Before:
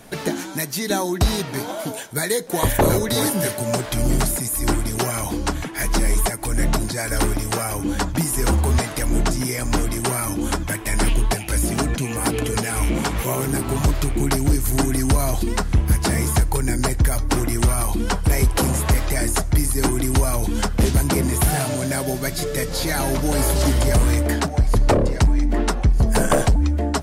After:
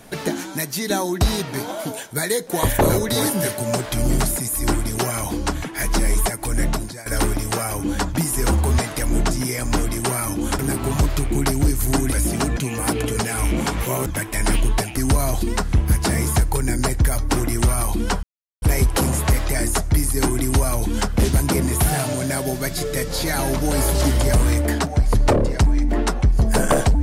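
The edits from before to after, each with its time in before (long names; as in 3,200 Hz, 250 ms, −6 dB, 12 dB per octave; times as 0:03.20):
0:06.59–0:07.06: fade out, to −15.5 dB
0:10.59–0:11.50: swap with 0:13.44–0:14.97
0:18.23: splice in silence 0.39 s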